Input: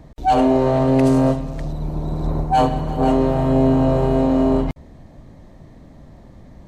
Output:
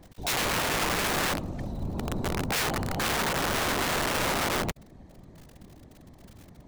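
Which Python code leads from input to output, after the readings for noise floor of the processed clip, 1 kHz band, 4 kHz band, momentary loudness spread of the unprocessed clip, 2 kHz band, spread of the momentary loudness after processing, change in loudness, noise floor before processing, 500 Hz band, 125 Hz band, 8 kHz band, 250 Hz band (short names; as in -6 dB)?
-53 dBFS, -9.5 dB, +7.5 dB, 11 LU, +8.0 dB, 8 LU, -9.5 dB, -44 dBFS, -14.0 dB, -13.5 dB, n/a, -16.5 dB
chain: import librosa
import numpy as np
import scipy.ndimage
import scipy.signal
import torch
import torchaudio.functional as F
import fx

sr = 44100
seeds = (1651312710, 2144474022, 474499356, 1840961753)

y = fx.dmg_crackle(x, sr, seeds[0], per_s=42.0, level_db=-29.0)
y = fx.whisperise(y, sr, seeds[1])
y = (np.mod(10.0 ** (15.0 / 20.0) * y + 1.0, 2.0) - 1.0) / 10.0 ** (15.0 / 20.0)
y = y * librosa.db_to_amplitude(-7.5)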